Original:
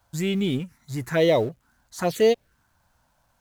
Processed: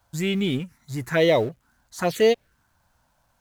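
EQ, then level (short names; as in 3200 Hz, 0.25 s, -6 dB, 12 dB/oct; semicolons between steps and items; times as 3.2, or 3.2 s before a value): dynamic EQ 2000 Hz, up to +4 dB, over -39 dBFS, Q 0.78; 0.0 dB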